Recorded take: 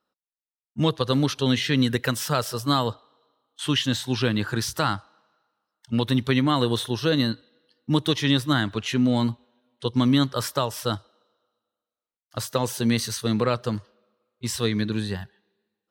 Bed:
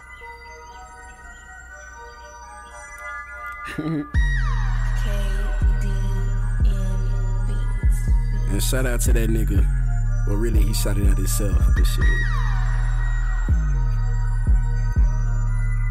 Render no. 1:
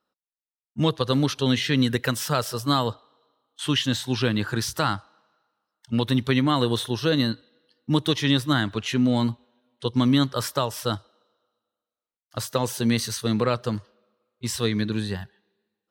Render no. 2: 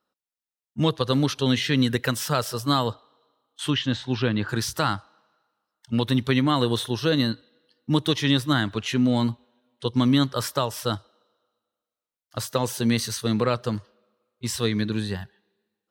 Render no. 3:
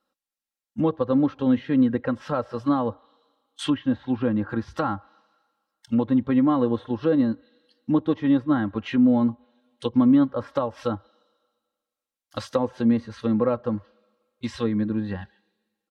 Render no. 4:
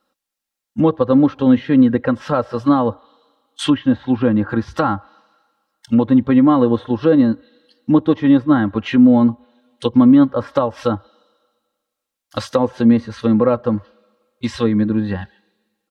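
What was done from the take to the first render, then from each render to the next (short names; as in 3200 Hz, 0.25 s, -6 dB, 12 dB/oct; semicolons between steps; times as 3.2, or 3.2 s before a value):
nothing audible
3.7–4.49 air absorption 150 m
treble ducked by the level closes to 1000 Hz, closed at -22 dBFS; comb 3.7 ms, depth 61%
gain +8 dB; limiter -3 dBFS, peak gain reduction 2 dB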